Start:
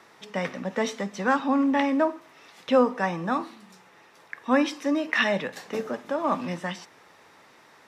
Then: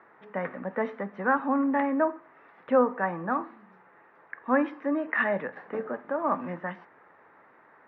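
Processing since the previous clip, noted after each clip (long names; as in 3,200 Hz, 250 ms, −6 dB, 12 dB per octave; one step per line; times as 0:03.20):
Chebyshev low-pass filter 1,700 Hz, order 3
low-shelf EQ 200 Hz −9 dB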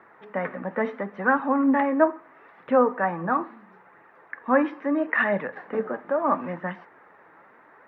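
flanger 0.75 Hz, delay 0.2 ms, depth 6.3 ms, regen +62%
level +8 dB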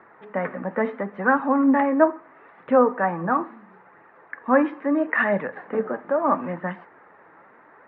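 high-frequency loss of the air 240 metres
level +3 dB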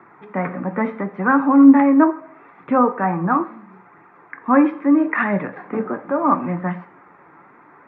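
convolution reverb RT60 0.55 s, pre-delay 3 ms, DRR 10 dB
level −2 dB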